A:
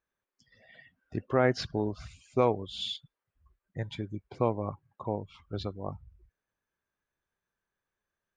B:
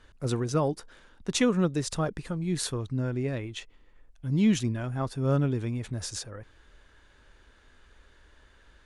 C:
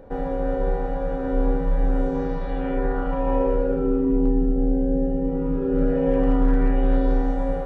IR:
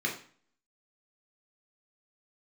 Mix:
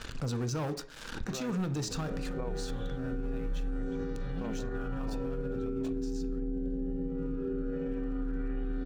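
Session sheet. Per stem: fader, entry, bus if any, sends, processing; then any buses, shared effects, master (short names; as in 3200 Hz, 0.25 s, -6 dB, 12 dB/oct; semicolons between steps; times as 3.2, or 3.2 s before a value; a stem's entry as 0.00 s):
-12.5 dB, 0.00 s, no bus, no send, running mean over 9 samples
1.99 s -11 dB -> 2.53 s -24 dB, 0.00 s, bus A, send -13.5 dB, LPF 6800 Hz 24 dB/oct; sample leveller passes 3; backwards sustainer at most 62 dB/s
-9.5 dB, 1.80 s, bus A, send -13.5 dB, band shelf 780 Hz -10.5 dB 1.1 oct
bus A: 0.0 dB, high shelf 3000 Hz +9 dB; limiter -25.5 dBFS, peak gain reduction 16 dB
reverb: on, RT60 0.45 s, pre-delay 3 ms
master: limiter -26.5 dBFS, peak gain reduction 9 dB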